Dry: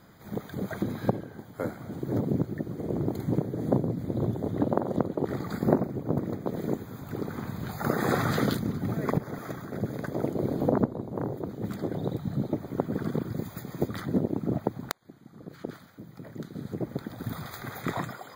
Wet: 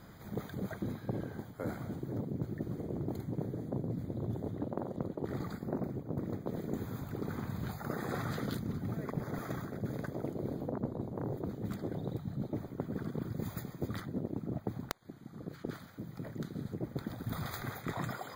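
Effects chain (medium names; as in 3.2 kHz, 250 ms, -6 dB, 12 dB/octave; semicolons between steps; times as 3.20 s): bass shelf 88 Hz +8 dB; reverse; compression 6:1, threshold -34 dBFS, peak gain reduction 18 dB; reverse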